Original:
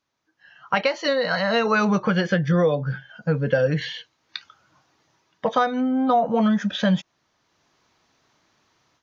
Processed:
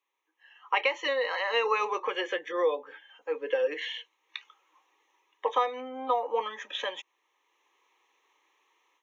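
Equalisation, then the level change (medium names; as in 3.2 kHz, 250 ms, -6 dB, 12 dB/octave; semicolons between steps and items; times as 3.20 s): Bessel high-pass 550 Hz, order 8; static phaser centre 980 Hz, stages 8; 0.0 dB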